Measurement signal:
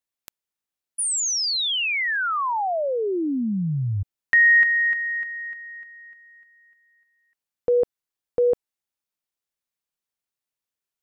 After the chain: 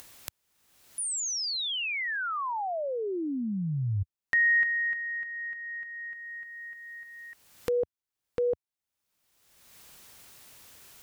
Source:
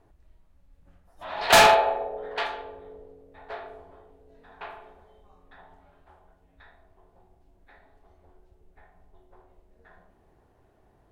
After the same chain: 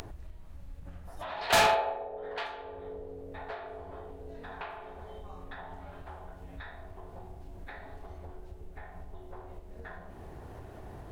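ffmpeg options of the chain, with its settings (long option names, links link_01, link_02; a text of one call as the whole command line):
ffmpeg -i in.wav -af "equalizer=frequency=87:width=1:gain=5,acompressor=mode=upward:threshold=-23dB:ratio=4:attack=3.1:release=627:knee=2.83:detection=peak,volume=-8dB" out.wav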